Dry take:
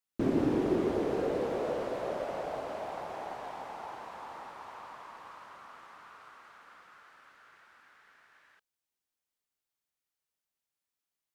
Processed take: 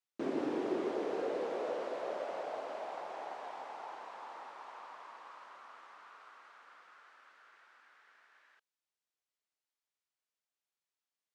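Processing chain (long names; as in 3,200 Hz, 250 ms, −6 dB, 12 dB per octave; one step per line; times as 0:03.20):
band-pass filter 360–7,500 Hz
level −3 dB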